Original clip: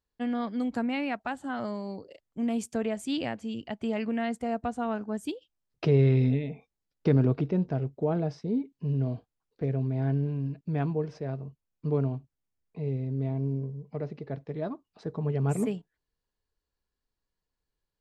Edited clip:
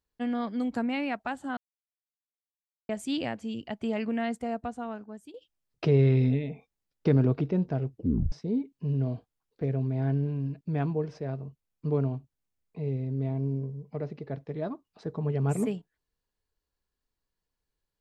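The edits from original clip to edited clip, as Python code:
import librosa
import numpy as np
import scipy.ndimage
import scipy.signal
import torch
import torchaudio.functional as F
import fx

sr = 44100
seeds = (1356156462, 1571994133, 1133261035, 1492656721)

y = fx.edit(x, sr, fx.silence(start_s=1.57, length_s=1.32),
    fx.fade_out_to(start_s=4.28, length_s=1.06, floor_db=-17.5),
    fx.tape_stop(start_s=7.9, length_s=0.42), tone=tone)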